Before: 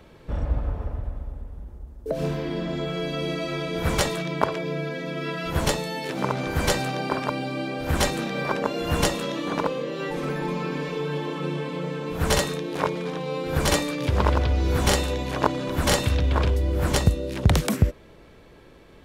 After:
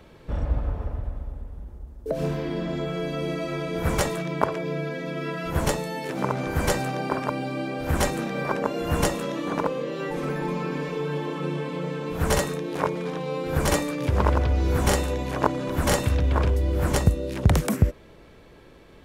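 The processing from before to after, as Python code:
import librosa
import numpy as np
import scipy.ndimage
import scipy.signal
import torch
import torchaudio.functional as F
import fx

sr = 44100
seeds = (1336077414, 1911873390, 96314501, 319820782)

y = fx.dynamic_eq(x, sr, hz=3800.0, q=1.1, threshold_db=-44.0, ratio=4.0, max_db=-7)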